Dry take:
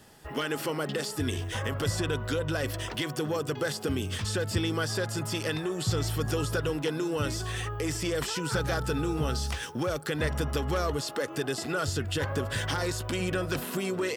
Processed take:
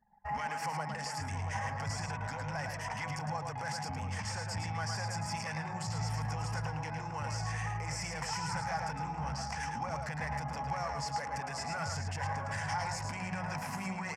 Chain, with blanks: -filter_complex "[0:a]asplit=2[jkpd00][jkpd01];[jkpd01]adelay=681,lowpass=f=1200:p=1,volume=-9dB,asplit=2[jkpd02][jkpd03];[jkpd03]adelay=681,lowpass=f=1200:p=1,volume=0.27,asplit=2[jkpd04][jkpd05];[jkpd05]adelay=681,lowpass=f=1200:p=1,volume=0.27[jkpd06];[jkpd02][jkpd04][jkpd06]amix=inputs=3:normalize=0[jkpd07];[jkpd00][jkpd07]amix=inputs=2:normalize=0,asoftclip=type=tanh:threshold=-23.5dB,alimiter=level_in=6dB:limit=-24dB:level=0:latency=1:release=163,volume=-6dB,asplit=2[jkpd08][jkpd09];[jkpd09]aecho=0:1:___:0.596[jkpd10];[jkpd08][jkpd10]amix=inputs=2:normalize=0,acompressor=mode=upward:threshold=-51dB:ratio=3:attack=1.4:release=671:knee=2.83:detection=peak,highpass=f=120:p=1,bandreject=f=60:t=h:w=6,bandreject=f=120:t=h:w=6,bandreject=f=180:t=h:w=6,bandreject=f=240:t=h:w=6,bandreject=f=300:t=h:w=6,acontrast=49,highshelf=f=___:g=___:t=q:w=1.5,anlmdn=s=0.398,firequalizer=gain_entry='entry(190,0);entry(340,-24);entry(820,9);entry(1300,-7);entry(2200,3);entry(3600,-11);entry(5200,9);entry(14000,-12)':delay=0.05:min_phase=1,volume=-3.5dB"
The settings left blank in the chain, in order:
109, 2500, -6.5